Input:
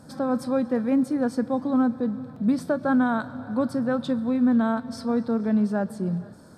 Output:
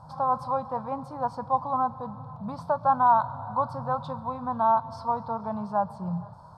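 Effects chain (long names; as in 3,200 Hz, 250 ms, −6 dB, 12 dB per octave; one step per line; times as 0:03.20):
drawn EQ curve 150 Hz 0 dB, 240 Hz −22 dB, 370 Hz −22 dB, 970 Hz +12 dB, 1,800 Hz −20 dB, 4,600 Hz −11 dB, 7,400 Hz −20 dB
level +3.5 dB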